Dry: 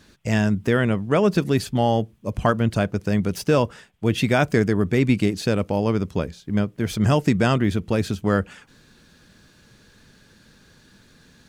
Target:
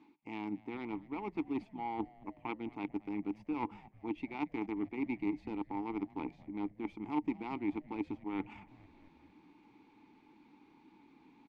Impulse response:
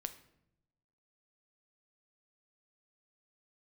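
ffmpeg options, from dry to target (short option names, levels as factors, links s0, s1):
-filter_complex "[0:a]equalizer=f=840:w=0.34:g=13,areverse,acompressor=threshold=0.0447:ratio=5,areverse,aeval=exprs='0.224*(cos(1*acos(clip(val(0)/0.224,-1,1)))-cos(1*PI/2))+0.0631*(cos(3*acos(clip(val(0)/0.224,-1,1)))-cos(3*PI/2))':c=same,asplit=2[s0][s1];[s1]alimiter=level_in=2:limit=0.0631:level=0:latency=1:release=108,volume=0.501,volume=1.06[s2];[s0][s2]amix=inputs=2:normalize=0,asplit=3[s3][s4][s5];[s3]bandpass=f=300:t=q:w=8,volume=1[s6];[s4]bandpass=f=870:t=q:w=8,volume=0.501[s7];[s5]bandpass=f=2240:t=q:w=8,volume=0.355[s8];[s6][s7][s8]amix=inputs=3:normalize=0,asplit=6[s9][s10][s11][s12][s13][s14];[s10]adelay=224,afreqshift=-96,volume=0.0891[s15];[s11]adelay=448,afreqshift=-192,volume=0.055[s16];[s12]adelay=672,afreqshift=-288,volume=0.0343[s17];[s13]adelay=896,afreqshift=-384,volume=0.0211[s18];[s14]adelay=1120,afreqshift=-480,volume=0.0132[s19];[s9][s15][s16][s17][s18][s19]amix=inputs=6:normalize=0,volume=2.37"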